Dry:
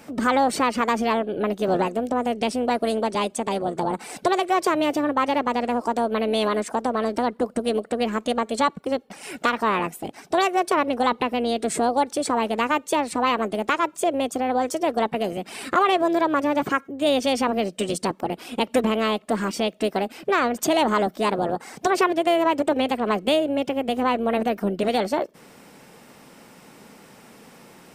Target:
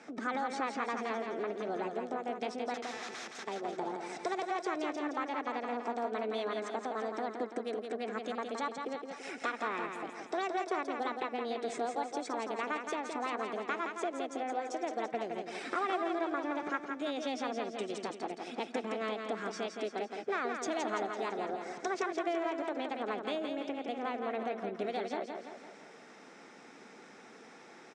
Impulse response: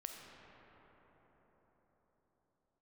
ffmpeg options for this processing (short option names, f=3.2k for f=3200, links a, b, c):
-filter_complex "[0:a]acompressor=threshold=-33dB:ratio=2,asettb=1/sr,asplit=3[a][b][c];[a]atrim=end=2.744[d];[b]atrim=start=2.74:end=3.44,asetpts=PTS-STARTPTS,afade=t=in:d=0.004:c=qsin,afade=t=out:st=0.696:d=0.004:c=qsin,aeval=exprs='(mod(39.8*val(0)+1,2)-1)/39.8':c=same[e];[c]atrim=start=3.436[f];[d][e]acrossfade=d=0.004:c1=hsin:c2=qsin[g];[g][f]acrossfade=d=0.004:c1=qsin:c2=hsin,highpass=350,equalizer=f=560:t=q:w=4:g=-7,equalizer=f=1k:t=q:w=4:g=-7,equalizer=f=2.9k:t=q:w=4:g=-9,equalizer=f=4.5k:t=q:w=4:g=-8,lowpass=f=6k:w=0.5412,lowpass=f=6k:w=1.3066,aecho=1:1:168|336|504|672|840|1008|1176:0.531|0.276|0.144|0.0746|0.0388|0.0202|0.0105,volume=-2.5dB"